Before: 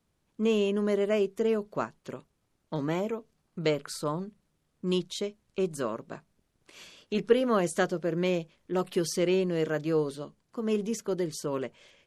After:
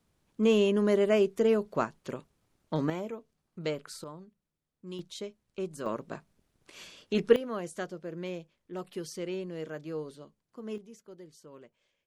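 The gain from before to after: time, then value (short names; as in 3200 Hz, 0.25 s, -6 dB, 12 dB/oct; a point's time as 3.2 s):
+2 dB
from 2.9 s -6 dB
from 4.04 s -13.5 dB
from 4.99 s -6.5 dB
from 5.86 s +1 dB
from 7.36 s -10 dB
from 10.78 s -19 dB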